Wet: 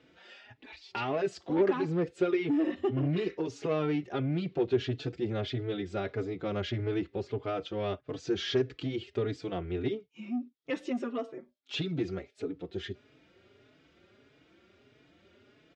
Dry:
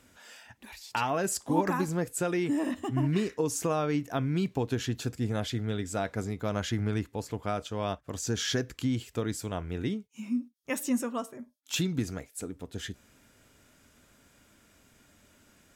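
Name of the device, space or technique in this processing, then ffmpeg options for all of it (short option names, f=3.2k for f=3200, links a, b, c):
barber-pole flanger into a guitar amplifier: -filter_complex "[0:a]asplit=2[a][b];[b]adelay=4.2,afreqshift=1.6[c];[a][c]amix=inputs=2:normalize=1,asoftclip=type=tanh:threshold=-27dB,highpass=100,equalizer=f=220:t=q:w=4:g=-6,equalizer=f=380:t=q:w=4:g=10,equalizer=f=980:t=q:w=4:g=-7,equalizer=f=1.6k:t=q:w=4:g=-4,lowpass=f=4.1k:w=0.5412,lowpass=f=4.1k:w=1.3066,volume=3.5dB"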